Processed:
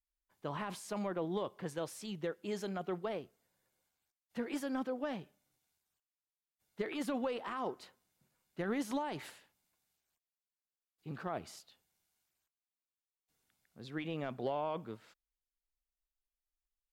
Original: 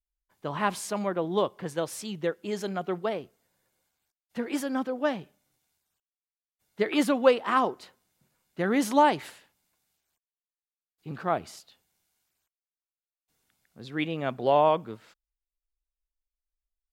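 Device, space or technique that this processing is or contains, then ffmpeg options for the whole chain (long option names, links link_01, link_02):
de-esser from a sidechain: -filter_complex "[0:a]asplit=2[link_01][link_02];[link_02]highpass=frequency=4100:poles=1,apad=whole_len=746597[link_03];[link_01][link_03]sidechaincompress=threshold=-42dB:ratio=16:attack=4.3:release=25,volume=-6dB"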